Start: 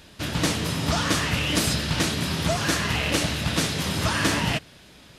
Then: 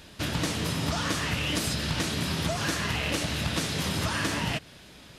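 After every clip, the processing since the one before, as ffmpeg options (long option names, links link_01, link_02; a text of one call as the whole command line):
ffmpeg -i in.wav -af "acompressor=threshold=-25dB:ratio=6" out.wav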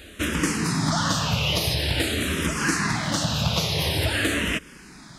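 ffmpeg -i in.wav -filter_complex "[0:a]asplit=2[link_01][link_02];[link_02]afreqshift=-0.47[link_03];[link_01][link_03]amix=inputs=2:normalize=1,volume=8dB" out.wav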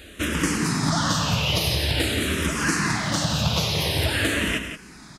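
ffmpeg -i in.wav -af "aecho=1:1:96.21|174.9:0.282|0.355" out.wav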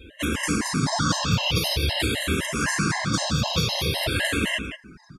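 ffmpeg -i in.wav -af "afftdn=noise_reduction=20:noise_floor=-45,afftfilt=real='re*gt(sin(2*PI*3.9*pts/sr)*(1-2*mod(floor(b*sr/1024/540),2)),0)':imag='im*gt(sin(2*PI*3.9*pts/sr)*(1-2*mod(floor(b*sr/1024/540),2)),0)':win_size=1024:overlap=0.75,volume=2.5dB" out.wav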